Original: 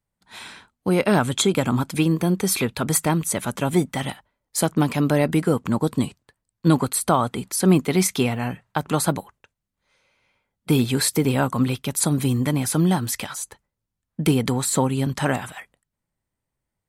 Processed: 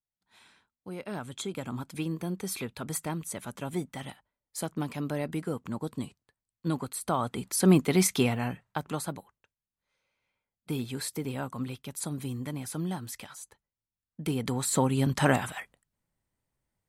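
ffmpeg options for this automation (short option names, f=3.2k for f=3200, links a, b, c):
-af "volume=9dB,afade=t=in:st=1:d=1.06:silence=0.446684,afade=t=in:st=6.98:d=0.63:silence=0.354813,afade=t=out:st=8.3:d=0.77:silence=0.316228,afade=t=in:st=14.21:d=1.11:silence=0.223872"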